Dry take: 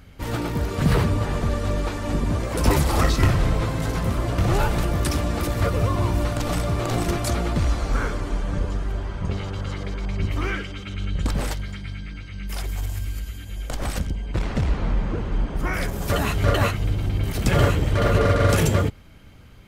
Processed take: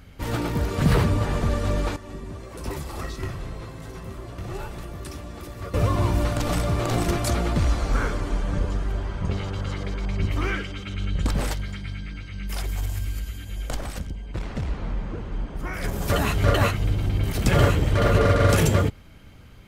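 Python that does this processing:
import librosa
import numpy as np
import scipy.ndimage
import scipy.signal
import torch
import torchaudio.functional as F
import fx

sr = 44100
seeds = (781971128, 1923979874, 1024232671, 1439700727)

y = fx.comb_fb(x, sr, f0_hz=380.0, decay_s=0.32, harmonics='odd', damping=0.0, mix_pct=80, at=(1.96, 5.74))
y = fx.edit(y, sr, fx.clip_gain(start_s=13.81, length_s=2.03, db=-6.0), tone=tone)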